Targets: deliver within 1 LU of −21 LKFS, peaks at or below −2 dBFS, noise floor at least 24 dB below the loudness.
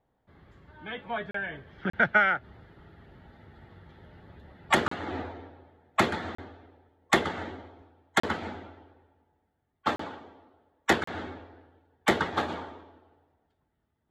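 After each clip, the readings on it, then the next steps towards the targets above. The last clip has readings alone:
number of dropouts 7; longest dropout 34 ms; integrated loudness −29.0 LKFS; sample peak −6.5 dBFS; target loudness −21.0 LKFS
→ repair the gap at 0:01.31/0:01.90/0:04.88/0:06.35/0:08.20/0:09.96/0:11.04, 34 ms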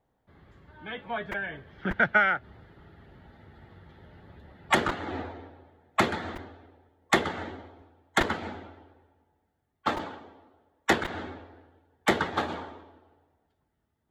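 number of dropouts 0; integrated loudness −29.0 LKFS; sample peak −6.5 dBFS; target loudness −21.0 LKFS
→ level +8 dB
brickwall limiter −2 dBFS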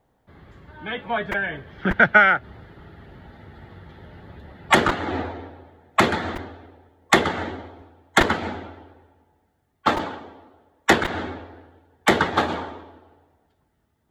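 integrated loudness −21.5 LKFS; sample peak −2.0 dBFS; background noise floor −69 dBFS

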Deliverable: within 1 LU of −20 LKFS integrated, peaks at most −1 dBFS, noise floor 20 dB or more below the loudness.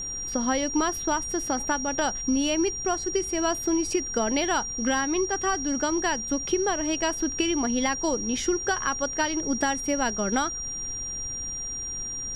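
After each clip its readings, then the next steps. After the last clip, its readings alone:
interfering tone 5,700 Hz; level of the tone −31 dBFS; background noise floor −34 dBFS; target noise floor −46 dBFS; integrated loudness −26.0 LKFS; sample peak −12.0 dBFS; target loudness −20.0 LKFS
→ notch filter 5,700 Hz, Q 30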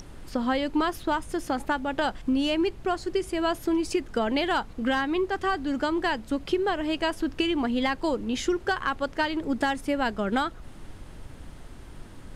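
interfering tone none found; background noise floor −45 dBFS; target noise floor −48 dBFS
→ noise reduction from a noise print 6 dB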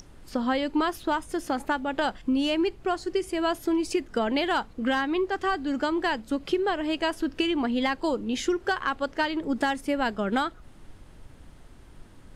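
background noise floor −50 dBFS; integrated loudness −27.5 LKFS; sample peak −13.0 dBFS; target loudness −20.0 LKFS
→ level +7.5 dB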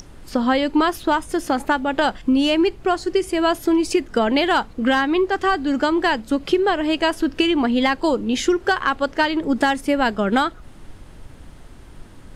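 integrated loudness −20.0 LKFS; sample peak −5.5 dBFS; background noise floor −42 dBFS

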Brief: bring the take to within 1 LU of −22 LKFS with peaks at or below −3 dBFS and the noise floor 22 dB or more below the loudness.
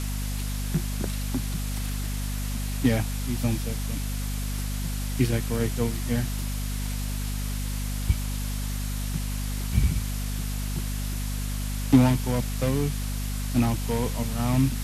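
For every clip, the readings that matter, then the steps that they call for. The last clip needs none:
mains hum 50 Hz; hum harmonics up to 250 Hz; level of the hum −27 dBFS; background noise floor −29 dBFS; target noise floor −50 dBFS; integrated loudness −28.0 LKFS; sample peak −5.0 dBFS; target loudness −22.0 LKFS
→ mains-hum notches 50/100/150/200/250 Hz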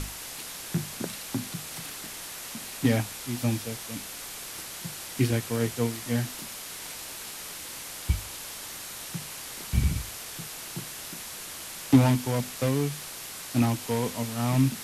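mains hum none found; background noise floor −40 dBFS; target noise floor −53 dBFS
→ broadband denoise 13 dB, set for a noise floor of −40 dBFS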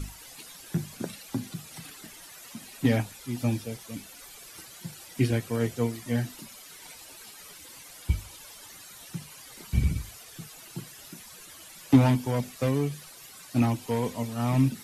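background noise floor −48 dBFS; target noise floor −51 dBFS
→ broadband denoise 6 dB, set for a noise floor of −48 dBFS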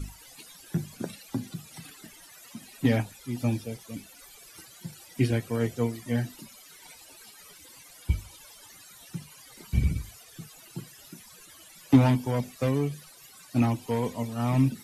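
background noise floor −52 dBFS; integrated loudness −28.5 LKFS; sample peak −6.0 dBFS; target loudness −22.0 LKFS
→ level +6.5 dB
brickwall limiter −3 dBFS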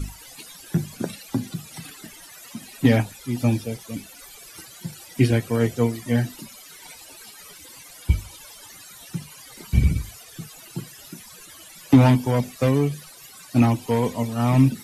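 integrated loudness −22.5 LKFS; sample peak −3.0 dBFS; background noise floor −45 dBFS

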